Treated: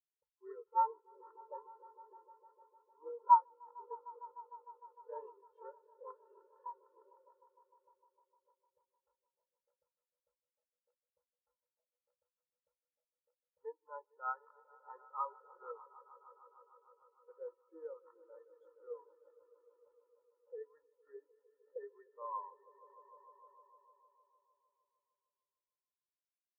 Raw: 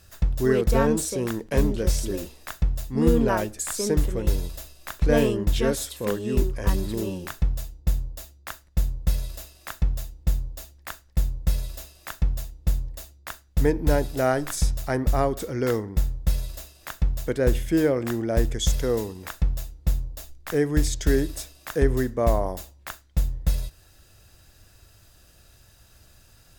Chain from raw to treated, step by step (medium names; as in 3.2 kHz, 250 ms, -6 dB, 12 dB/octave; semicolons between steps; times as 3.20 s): treble shelf 4.9 kHz +3.5 dB; auto-wah 350–1100 Hz, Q 6.1, up, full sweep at -23 dBFS; bass shelf 130 Hz -9.5 dB; hum notches 60/120/180/240/300/360/420 Hz; comb 2.2 ms, depth 73%; echo with a slow build-up 152 ms, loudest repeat 5, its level -10.5 dB; spectral contrast expander 2.5:1; trim +5.5 dB